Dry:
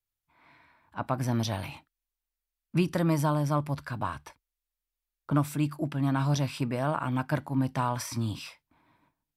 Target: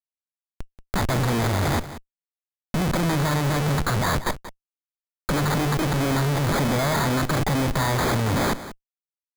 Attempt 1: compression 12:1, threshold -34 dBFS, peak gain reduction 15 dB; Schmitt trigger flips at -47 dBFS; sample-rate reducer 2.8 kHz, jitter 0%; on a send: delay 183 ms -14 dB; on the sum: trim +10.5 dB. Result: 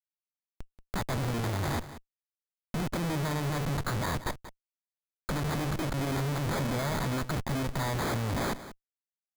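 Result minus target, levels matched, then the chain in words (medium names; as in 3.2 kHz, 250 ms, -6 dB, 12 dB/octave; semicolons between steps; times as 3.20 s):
compression: peak gain reduction +10 dB
compression 12:1, threshold -23 dBFS, peak gain reduction 5 dB; Schmitt trigger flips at -47 dBFS; sample-rate reducer 2.8 kHz, jitter 0%; on a send: delay 183 ms -14 dB; on the sum: trim +10.5 dB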